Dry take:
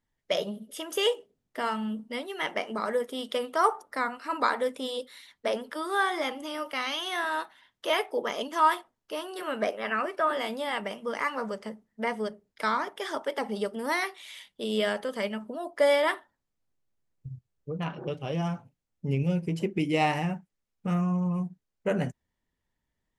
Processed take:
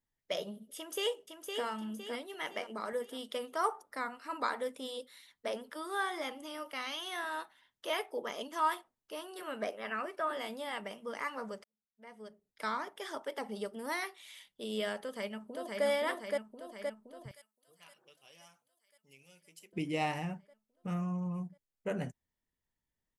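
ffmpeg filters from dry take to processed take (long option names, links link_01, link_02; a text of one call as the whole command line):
ffmpeg -i in.wav -filter_complex "[0:a]asplit=2[link_01][link_02];[link_02]afade=type=in:start_time=0.76:duration=0.01,afade=type=out:start_time=1.64:duration=0.01,aecho=0:1:510|1020|1530|2040|2550:0.530884|0.238898|0.107504|0.0483768|0.0217696[link_03];[link_01][link_03]amix=inputs=2:normalize=0,asettb=1/sr,asplit=3[link_04][link_05][link_06];[link_04]atrim=end=2.344[link_07];[link_05]atrim=start=2.34:end=2.93,asetpts=PTS-STARTPTS,afade=type=in:duration=0.004:curve=qsin,afade=type=out:start_time=0.586:duration=0.004:curve=qsin,highpass=170[link_08];[link_06]atrim=start=2.926[link_09];[link_07][link_08]acrossfade=duration=0.004:curve1=hsin:curve2=qsin[link_10];[link_10][link_09]acrossfade=duration=0.004:curve1=qsin:curve2=hsin,asplit=2[link_11][link_12];[link_12]afade=type=in:start_time=15.02:duration=0.01,afade=type=out:start_time=15.85:duration=0.01,aecho=0:1:520|1040|1560|2080|2600|3120|3640|4160|4680|5200|5720:0.794328|0.516313|0.335604|0.218142|0.141793|0.0921652|0.0599074|0.0389398|0.0253109|0.0164521|0.0106938[link_13];[link_11][link_13]amix=inputs=2:normalize=0,asettb=1/sr,asplit=3[link_14][link_15][link_16];[link_14]atrim=end=17.314[link_17];[link_15]atrim=start=17.31:end=19.73,asetpts=PTS-STARTPTS,afade=type=in:duration=0.004:curve=qsin,afade=type=out:start_time=2.416:duration=0.004:curve=qsin,aderivative[link_18];[link_16]atrim=start=19.726[link_19];[link_17][link_18]acrossfade=duration=0.004:curve1=hsin:curve2=qsin[link_20];[link_20][link_19]acrossfade=duration=0.004:curve1=qsin:curve2=hsin,asplit=2[link_21][link_22];[link_21]atrim=end=11.64,asetpts=PTS-STARTPTS,afade=type=out:start_time=11.636:duration=0.004:curve=hsin[link_23];[link_22]atrim=start=11.64,asetpts=PTS-STARTPTS,afade=type=in:duration=1.01:curve=qua[link_24];[link_23][link_24]concat=n=2:v=0:a=1,highshelf=frequency=7900:gain=6.5,volume=-8.5dB" out.wav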